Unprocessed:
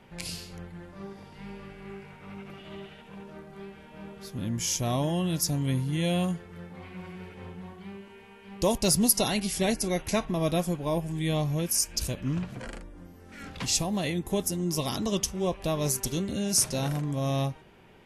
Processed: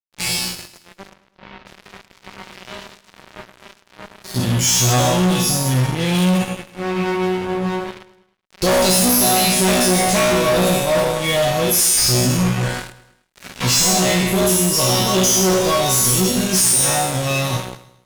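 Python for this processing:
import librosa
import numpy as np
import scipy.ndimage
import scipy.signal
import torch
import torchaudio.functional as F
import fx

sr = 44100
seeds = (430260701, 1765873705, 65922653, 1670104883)

y = fx.spec_trails(x, sr, decay_s=0.94)
y = fx.high_shelf(y, sr, hz=2500.0, db=-12.0, at=(5.41, 6.15))
y = fx.resonator_bank(y, sr, root=47, chord='fifth', decay_s=0.63)
y = fx.fuzz(y, sr, gain_db=48.0, gate_db=-56.0)
y = fx.air_absorb(y, sr, metres=270.0, at=(1.13, 1.65), fade=0.02)
y = fx.echo_feedback(y, sr, ms=106, feedback_pct=50, wet_db=-18)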